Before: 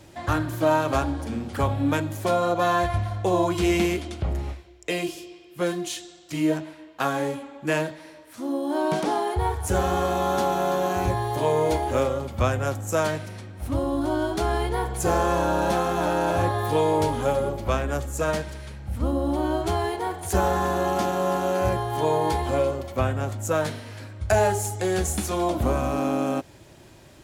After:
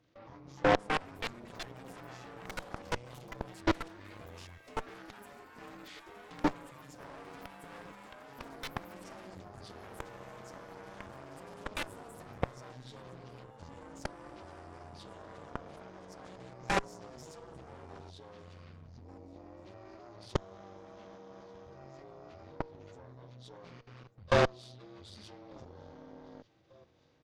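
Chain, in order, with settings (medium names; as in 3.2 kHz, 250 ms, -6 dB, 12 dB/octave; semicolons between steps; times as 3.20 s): frequency axis rescaled in octaves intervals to 80%; level held to a coarse grid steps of 20 dB; ever faster or slower copies 468 ms, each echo +7 st, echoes 3; on a send: feedback delay 1194 ms, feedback 57%, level -21.5 dB; on the sum: Chebyshev shaper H 3 -16 dB, 7 -19 dB, 8 -22 dB, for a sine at -10 dBFS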